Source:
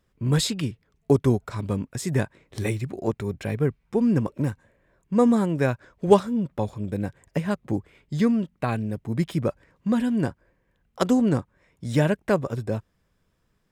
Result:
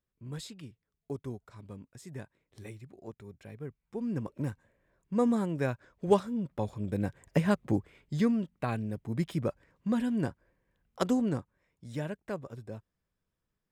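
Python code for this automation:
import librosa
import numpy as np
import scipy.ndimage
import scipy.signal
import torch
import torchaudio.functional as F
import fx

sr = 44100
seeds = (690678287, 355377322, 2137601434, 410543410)

y = fx.gain(x, sr, db=fx.line((3.58, -19.0), (4.48, -8.0), (6.38, -8.0), (7.44, 0.0), (8.37, -6.5), (11.05, -6.5), (11.89, -15.0)))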